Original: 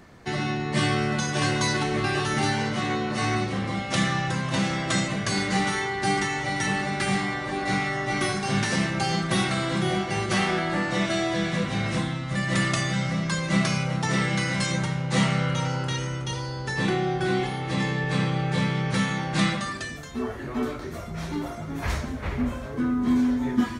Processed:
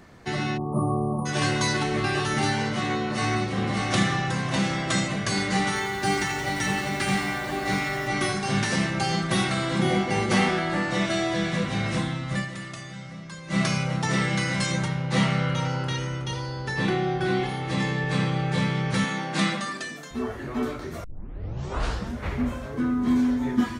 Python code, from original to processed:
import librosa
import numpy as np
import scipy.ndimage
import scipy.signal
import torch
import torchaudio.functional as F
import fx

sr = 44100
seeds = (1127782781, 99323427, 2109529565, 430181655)

y = fx.spec_erase(x, sr, start_s=0.58, length_s=0.68, low_hz=1300.0, high_hz=9100.0)
y = fx.echo_throw(y, sr, start_s=2.98, length_s=0.59, ms=590, feedback_pct=40, wet_db=-4.0)
y = fx.echo_crushed(y, sr, ms=86, feedback_pct=80, bits=7, wet_db=-9.0, at=(5.67, 8.08))
y = fx.small_body(y, sr, hz=(250.0, 470.0, 840.0, 2100.0), ring_ms=45, db=10, at=(9.79, 10.49))
y = fx.peak_eq(y, sr, hz=7800.0, db=-6.0, octaves=0.77, at=(14.88, 17.49))
y = fx.highpass(y, sr, hz=170.0, slope=24, at=(19.04, 20.11))
y = fx.edit(y, sr, fx.fade_down_up(start_s=12.37, length_s=1.24, db=-13.0, fade_s=0.15),
    fx.tape_start(start_s=21.04, length_s=1.19), tone=tone)